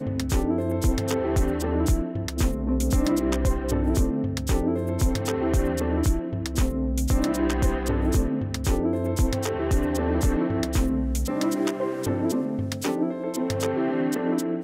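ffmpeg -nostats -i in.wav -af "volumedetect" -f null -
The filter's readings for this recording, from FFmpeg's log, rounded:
mean_volume: -23.8 dB
max_volume: -13.0 dB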